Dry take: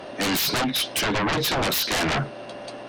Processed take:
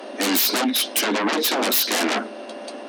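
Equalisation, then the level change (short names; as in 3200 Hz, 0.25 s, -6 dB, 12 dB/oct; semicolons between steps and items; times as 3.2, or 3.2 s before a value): steep high-pass 210 Hz 96 dB/oct; low shelf 430 Hz +6 dB; high shelf 6800 Hz +8.5 dB; 0.0 dB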